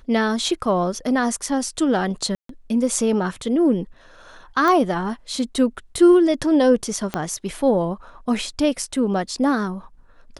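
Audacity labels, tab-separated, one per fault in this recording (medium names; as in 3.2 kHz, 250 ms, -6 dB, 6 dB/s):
2.350000	2.490000	dropout 143 ms
4.680000	4.680000	pop -10 dBFS
7.140000	7.140000	pop -9 dBFS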